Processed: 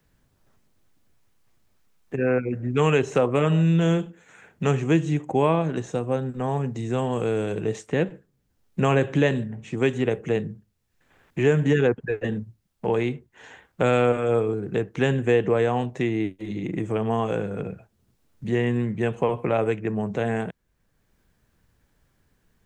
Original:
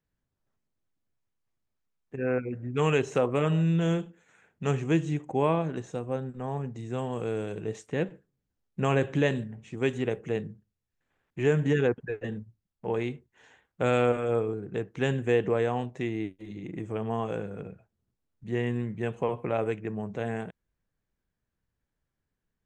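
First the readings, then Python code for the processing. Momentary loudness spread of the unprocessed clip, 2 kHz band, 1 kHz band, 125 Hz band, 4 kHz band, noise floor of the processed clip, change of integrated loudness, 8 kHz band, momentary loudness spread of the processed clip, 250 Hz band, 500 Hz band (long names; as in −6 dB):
13 LU, +5.0 dB, +5.5 dB, +5.5 dB, +5.0 dB, −69 dBFS, +5.5 dB, can't be measured, 10 LU, +5.5 dB, +5.5 dB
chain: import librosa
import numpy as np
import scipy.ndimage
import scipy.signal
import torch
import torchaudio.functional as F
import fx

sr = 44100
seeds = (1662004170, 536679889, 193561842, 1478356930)

y = fx.band_squash(x, sr, depth_pct=40)
y = y * 10.0 ** (5.5 / 20.0)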